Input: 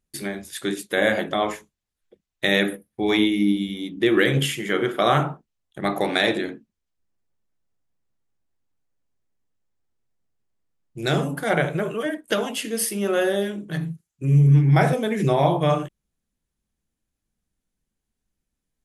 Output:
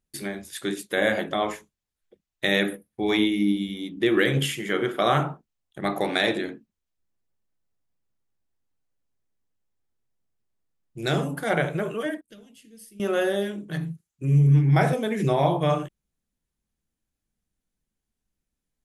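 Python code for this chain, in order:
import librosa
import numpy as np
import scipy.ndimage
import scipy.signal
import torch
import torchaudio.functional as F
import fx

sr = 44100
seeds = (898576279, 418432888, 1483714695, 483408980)

y = fx.tone_stack(x, sr, knobs='10-0-1', at=(12.21, 13.0))
y = y * 10.0 ** (-2.5 / 20.0)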